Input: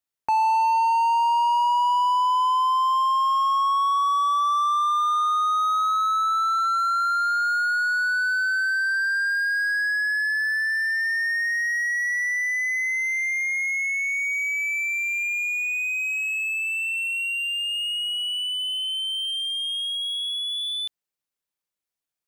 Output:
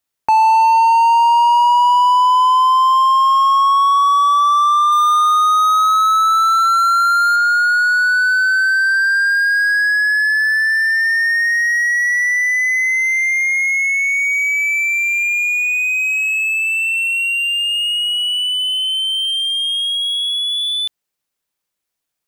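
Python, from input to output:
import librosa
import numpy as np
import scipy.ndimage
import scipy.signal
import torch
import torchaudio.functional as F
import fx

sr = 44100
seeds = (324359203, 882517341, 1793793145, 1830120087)

y = fx.high_shelf(x, sr, hz=6900.0, db=9.5, at=(4.92, 7.36))
y = y * librosa.db_to_amplitude(9.0)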